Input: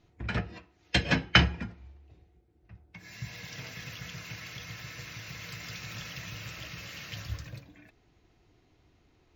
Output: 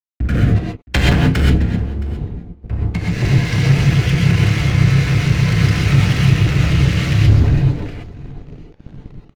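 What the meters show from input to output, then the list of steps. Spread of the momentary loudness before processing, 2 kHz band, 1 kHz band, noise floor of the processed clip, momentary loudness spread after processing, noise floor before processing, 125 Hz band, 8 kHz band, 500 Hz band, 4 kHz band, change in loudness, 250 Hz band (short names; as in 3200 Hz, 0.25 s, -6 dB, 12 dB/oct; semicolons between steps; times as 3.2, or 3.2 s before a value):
19 LU, +10.0 dB, +11.0 dB, -45 dBFS, 13 LU, -67 dBFS, +25.0 dB, +13.5 dB, +16.5 dB, +7.5 dB, +18.0 dB, +20.5 dB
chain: RIAA curve playback; de-hum 113.1 Hz, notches 3; expander -48 dBFS; dynamic EQ 1300 Hz, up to +4 dB, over -45 dBFS, Q 0.74; AGC gain up to 10 dB; sample leveller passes 5; in parallel at -1 dB: compressor, threshold -16 dBFS, peak gain reduction 12 dB; on the sum: crossover distortion -36.5 dBFS; rotary speaker horn 0.9 Hz, later 5 Hz, at 2.62; on a send: echo 0.668 s -21.5 dB; on the sum: non-linear reverb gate 0.15 s rising, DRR -2 dB; gain -10 dB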